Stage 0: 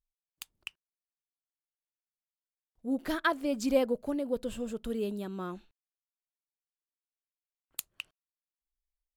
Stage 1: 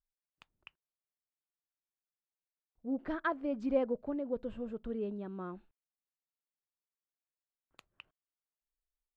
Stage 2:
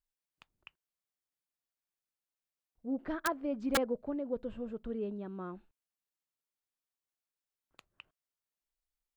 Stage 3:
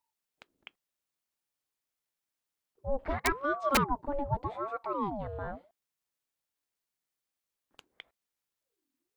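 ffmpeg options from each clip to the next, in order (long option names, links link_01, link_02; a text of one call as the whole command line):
ffmpeg -i in.wav -af "lowpass=1700,volume=-4dB" out.wav
ffmpeg -i in.wav -af "aeval=exprs='(mod(13.3*val(0)+1,2)-1)/13.3':channel_layout=same" out.wav
ffmpeg -i in.wav -af "aeval=exprs='val(0)*sin(2*PI*600*n/s+600*0.55/0.84*sin(2*PI*0.84*n/s))':channel_layout=same,volume=7dB" out.wav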